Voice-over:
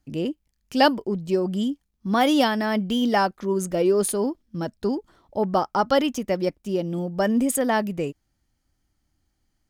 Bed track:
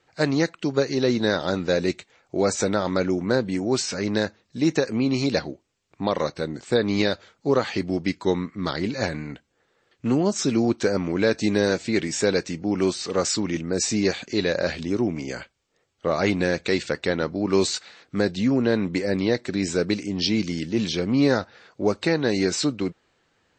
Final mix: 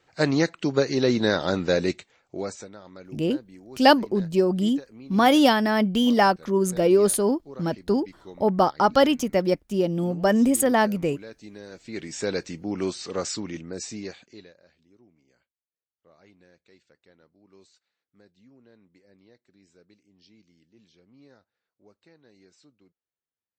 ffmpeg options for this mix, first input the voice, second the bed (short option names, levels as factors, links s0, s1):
-filter_complex "[0:a]adelay=3050,volume=1.26[s0];[1:a]volume=6.31,afade=t=out:st=1.75:d=0.93:silence=0.0841395,afade=t=in:st=11.71:d=0.62:silence=0.158489,afade=t=out:st=13.15:d=1.4:silence=0.0334965[s1];[s0][s1]amix=inputs=2:normalize=0"